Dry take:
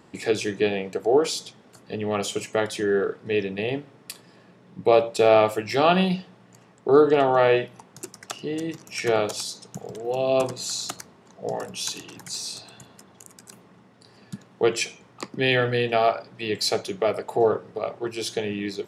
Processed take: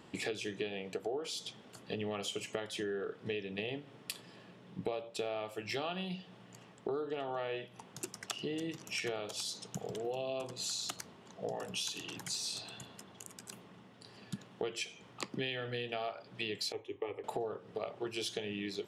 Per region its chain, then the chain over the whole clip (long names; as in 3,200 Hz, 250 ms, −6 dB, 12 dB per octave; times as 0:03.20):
0:16.72–0:17.24: head-to-tape spacing loss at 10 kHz 26 dB + phaser with its sweep stopped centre 950 Hz, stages 8 + multiband upward and downward expander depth 100%
whole clip: parametric band 3,100 Hz +7 dB 0.56 octaves; downward compressor 12 to 1, threshold −31 dBFS; level −3.5 dB